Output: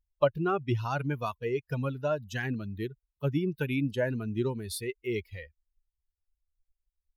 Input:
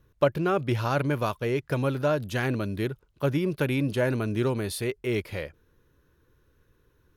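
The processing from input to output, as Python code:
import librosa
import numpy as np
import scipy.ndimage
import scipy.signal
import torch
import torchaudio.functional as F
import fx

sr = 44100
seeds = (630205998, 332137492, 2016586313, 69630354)

y = fx.bin_expand(x, sr, power=2.0)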